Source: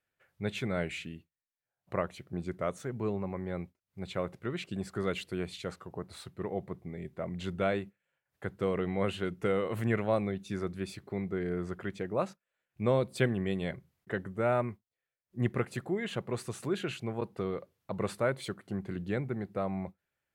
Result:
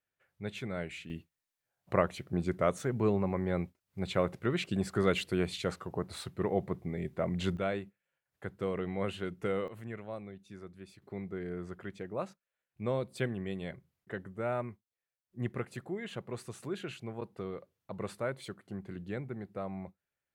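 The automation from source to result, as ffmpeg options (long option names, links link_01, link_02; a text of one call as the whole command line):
ffmpeg -i in.wav -af "asetnsamples=nb_out_samples=441:pad=0,asendcmd='1.1 volume volume 4.5dB;7.57 volume volume -3.5dB;9.68 volume volume -13dB;11.02 volume volume -5.5dB',volume=-5dB" out.wav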